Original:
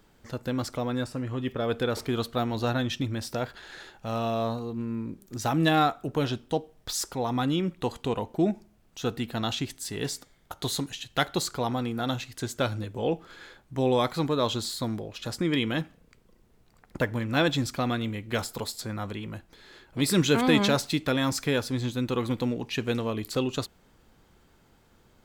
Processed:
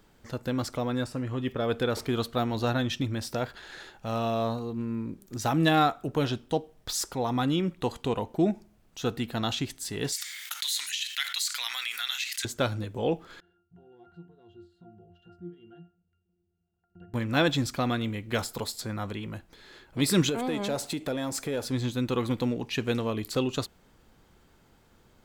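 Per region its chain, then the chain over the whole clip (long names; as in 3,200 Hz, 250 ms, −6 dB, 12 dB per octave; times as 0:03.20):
0:10.12–0:12.45: Chebyshev high-pass filter 2,000 Hz, order 3 + envelope flattener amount 70%
0:13.40–0:17.14: leveller curve on the samples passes 1 + downward compressor 4 to 1, threshold −32 dBFS + resonances in every octave F, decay 0.36 s
0:20.29–0:21.65: flat-topped bell 2,400 Hz −9.5 dB 2.9 octaves + downward compressor 4 to 1, threshold −29 dBFS + mid-hump overdrive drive 14 dB, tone 5,000 Hz, clips at −17.5 dBFS
whole clip: no processing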